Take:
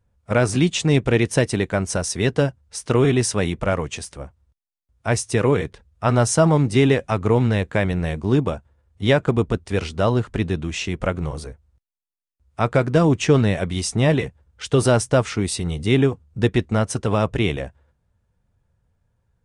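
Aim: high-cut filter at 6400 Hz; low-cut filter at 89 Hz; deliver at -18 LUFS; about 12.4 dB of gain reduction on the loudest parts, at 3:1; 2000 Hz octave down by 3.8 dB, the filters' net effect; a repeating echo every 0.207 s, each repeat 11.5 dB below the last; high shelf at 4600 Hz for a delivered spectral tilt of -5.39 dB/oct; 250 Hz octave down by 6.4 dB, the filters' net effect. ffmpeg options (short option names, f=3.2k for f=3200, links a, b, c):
-af "highpass=89,lowpass=6.4k,equalizer=f=250:t=o:g=-9,equalizer=f=2k:t=o:g=-4,highshelf=f=4.6k:g=-4,acompressor=threshold=-32dB:ratio=3,aecho=1:1:207|414|621:0.266|0.0718|0.0194,volume=16dB"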